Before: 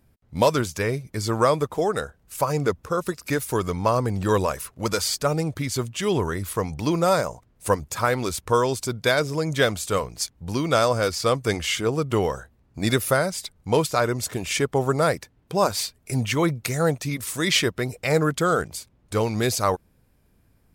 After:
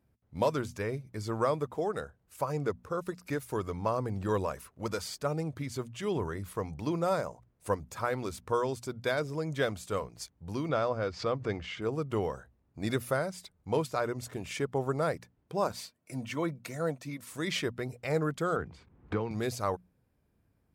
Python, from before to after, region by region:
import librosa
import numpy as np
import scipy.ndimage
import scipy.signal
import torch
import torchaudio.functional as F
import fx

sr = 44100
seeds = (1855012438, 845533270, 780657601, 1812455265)

y = fx.chain(x, sr, fx.air_absorb(metres=160.0),
    fx.pre_swell(db_per_s=130.0), at=(10.69, 11.82))
y = fx.chain(y, sr, fx.highpass(hz=170.0, slope=12),
    fx.notch_comb(f0_hz=410.0), at=(15.72, 17.31))
y = fx.chain(y, sr, fx.lowpass(hz=2900.0, slope=12),
    fx.peak_eq(hz=600.0, db=-10.5, octaves=0.25),
    fx.band_squash(depth_pct=100), at=(18.56, 19.31))
y = scipy.signal.sosfilt(scipy.signal.butter(2, 50.0, 'highpass', fs=sr, output='sos'), y)
y = fx.high_shelf(y, sr, hz=2500.0, db=-8.0)
y = fx.hum_notches(y, sr, base_hz=60, count=4)
y = F.gain(torch.from_numpy(y), -8.5).numpy()